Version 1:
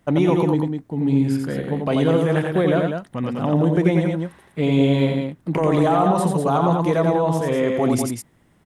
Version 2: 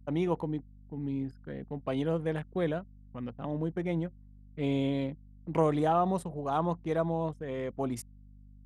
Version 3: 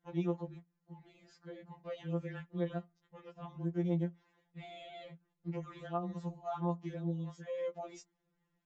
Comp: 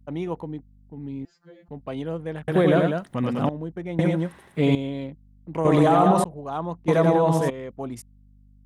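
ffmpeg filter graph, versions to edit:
-filter_complex "[0:a]asplit=4[a][b][c][d];[1:a]asplit=6[e][f][g][h][i][j];[e]atrim=end=1.252[k];[2:a]atrim=start=1.248:end=1.682[l];[f]atrim=start=1.678:end=2.482[m];[a]atrim=start=2.478:end=3.492[n];[g]atrim=start=3.488:end=3.992[o];[b]atrim=start=3.988:end=4.752[p];[h]atrim=start=4.748:end=5.652[q];[c]atrim=start=5.648:end=6.242[r];[i]atrim=start=6.238:end=6.882[s];[d]atrim=start=6.878:end=7.502[t];[j]atrim=start=7.498[u];[k][l]acrossfade=d=0.004:c1=hsin:c2=hsin[v];[v][m]acrossfade=d=0.004:c1=hsin:c2=hsin[w];[w][n]acrossfade=d=0.004:c1=hsin:c2=hsin[x];[x][o]acrossfade=d=0.004:c1=hsin:c2=hsin[y];[y][p]acrossfade=d=0.004:c1=hsin:c2=hsin[z];[z][q]acrossfade=d=0.004:c1=hsin:c2=hsin[aa];[aa][r]acrossfade=d=0.004:c1=hsin:c2=hsin[ab];[ab][s]acrossfade=d=0.004:c1=hsin:c2=hsin[ac];[ac][t]acrossfade=d=0.004:c1=hsin:c2=hsin[ad];[ad][u]acrossfade=d=0.004:c1=hsin:c2=hsin"

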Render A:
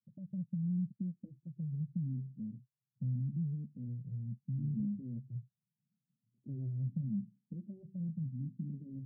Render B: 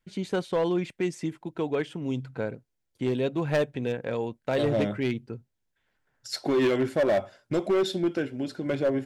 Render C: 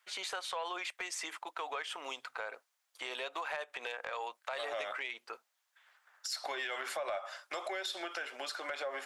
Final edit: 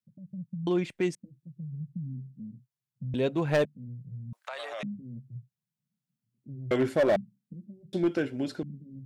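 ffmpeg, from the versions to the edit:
-filter_complex "[1:a]asplit=4[a][b][c][d];[0:a]asplit=6[e][f][g][h][i][j];[e]atrim=end=0.672[k];[a]atrim=start=0.668:end=1.152[l];[f]atrim=start=1.148:end=3.142[m];[b]atrim=start=3.138:end=3.652[n];[g]atrim=start=3.648:end=4.332[o];[2:a]atrim=start=4.328:end=4.832[p];[h]atrim=start=4.828:end=6.712[q];[c]atrim=start=6.708:end=7.162[r];[i]atrim=start=7.158:end=7.932[s];[d]atrim=start=7.928:end=8.632[t];[j]atrim=start=8.628[u];[k][l]acrossfade=d=0.004:c1=hsin:c2=hsin[v];[v][m]acrossfade=d=0.004:c1=hsin:c2=hsin[w];[w][n]acrossfade=d=0.004:c1=hsin:c2=hsin[x];[x][o]acrossfade=d=0.004:c1=hsin:c2=hsin[y];[y][p]acrossfade=d=0.004:c1=hsin:c2=hsin[z];[z][q]acrossfade=d=0.004:c1=hsin:c2=hsin[aa];[aa][r]acrossfade=d=0.004:c1=hsin:c2=hsin[ab];[ab][s]acrossfade=d=0.004:c1=hsin:c2=hsin[ac];[ac][t]acrossfade=d=0.004:c1=hsin:c2=hsin[ad];[ad][u]acrossfade=d=0.004:c1=hsin:c2=hsin"

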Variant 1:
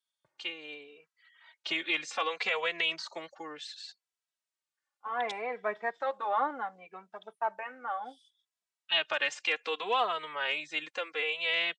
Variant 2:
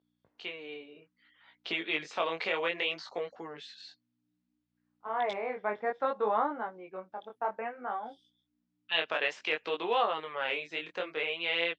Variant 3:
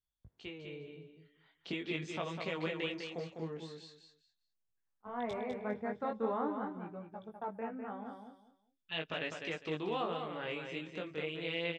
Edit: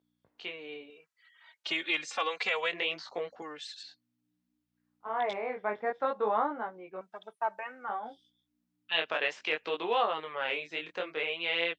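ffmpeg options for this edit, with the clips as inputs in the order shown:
-filter_complex "[0:a]asplit=3[a][b][c];[1:a]asplit=4[d][e][f][g];[d]atrim=end=0.902[h];[a]atrim=start=0.898:end=2.732[i];[e]atrim=start=2.728:end=3.422[j];[b]atrim=start=3.418:end=3.832[k];[f]atrim=start=3.828:end=7.012[l];[c]atrim=start=7.008:end=7.892[m];[g]atrim=start=7.888[n];[h][i]acrossfade=d=0.004:c1=hsin:c2=hsin[o];[o][j]acrossfade=d=0.004:c1=hsin:c2=hsin[p];[p][k]acrossfade=d=0.004:c1=hsin:c2=hsin[q];[q][l]acrossfade=d=0.004:c1=hsin:c2=hsin[r];[r][m]acrossfade=d=0.004:c1=hsin:c2=hsin[s];[s][n]acrossfade=d=0.004:c1=hsin:c2=hsin"

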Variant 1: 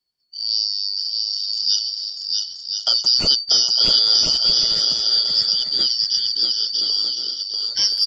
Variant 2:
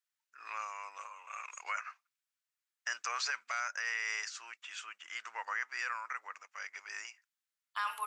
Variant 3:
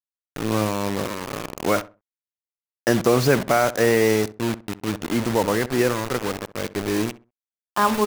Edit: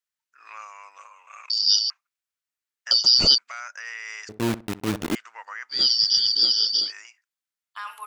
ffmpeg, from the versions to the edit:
-filter_complex "[0:a]asplit=3[a][b][c];[1:a]asplit=5[d][e][f][g][h];[d]atrim=end=1.502[i];[a]atrim=start=1.498:end=1.902[j];[e]atrim=start=1.898:end=2.912[k];[b]atrim=start=2.908:end=3.382[l];[f]atrim=start=3.378:end=4.292[m];[2:a]atrim=start=4.288:end=5.152[n];[g]atrim=start=5.148:end=5.85[o];[c]atrim=start=5.69:end=6.93[p];[h]atrim=start=6.77[q];[i][j]acrossfade=d=0.004:c1=hsin:c2=hsin[r];[r][k]acrossfade=d=0.004:c1=hsin:c2=hsin[s];[s][l]acrossfade=d=0.004:c1=hsin:c2=hsin[t];[t][m]acrossfade=d=0.004:c1=hsin:c2=hsin[u];[u][n]acrossfade=d=0.004:c1=hsin:c2=hsin[v];[v][o]acrossfade=d=0.004:c1=hsin:c2=hsin[w];[w][p]acrossfade=d=0.16:c1=tri:c2=tri[x];[x][q]acrossfade=d=0.16:c1=tri:c2=tri"

